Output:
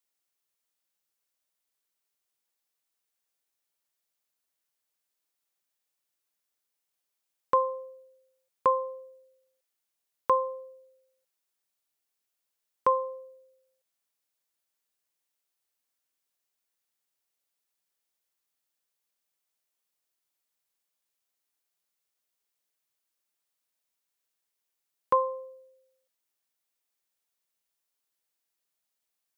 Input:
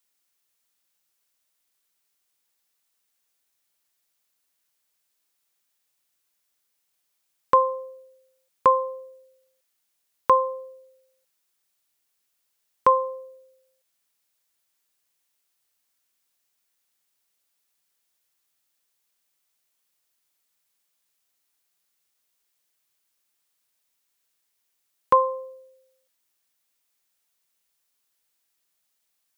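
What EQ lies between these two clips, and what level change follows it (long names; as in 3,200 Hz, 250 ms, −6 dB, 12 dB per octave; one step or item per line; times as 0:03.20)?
parametric band 530 Hz +3.5 dB 2 octaves
−8.5 dB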